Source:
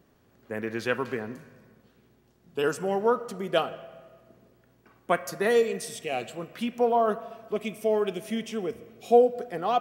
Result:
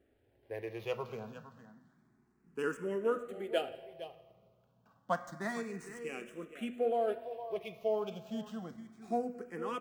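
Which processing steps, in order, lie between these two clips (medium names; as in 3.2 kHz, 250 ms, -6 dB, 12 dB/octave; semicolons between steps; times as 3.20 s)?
median filter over 9 samples; de-hum 122.3 Hz, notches 29; on a send: delay 460 ms -13.5 dB; on the sum: barber-pole phaser +0.29 Hz; trim -5.5 dB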